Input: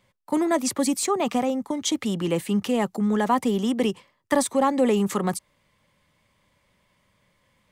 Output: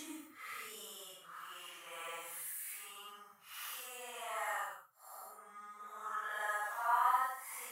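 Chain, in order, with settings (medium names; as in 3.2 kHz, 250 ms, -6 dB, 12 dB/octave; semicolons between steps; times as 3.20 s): high-pass sweep 130 Hz -> 690 Hz, 1.70–2.22 s; FFT filter 130 Hz 0 dB, 190 Hz -28 dB, 310 Hz -27 dB, 860 Hz -16 dB, 1.3 kHz +2 dB, 2.5 kHz -8 dB, 4.2 kHz -10 dB, 7.9 kHz -4 dB, 12 kHz +6 dB; Paulstretch 5×, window 0.10 s, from 1.92 s; trim -6 dB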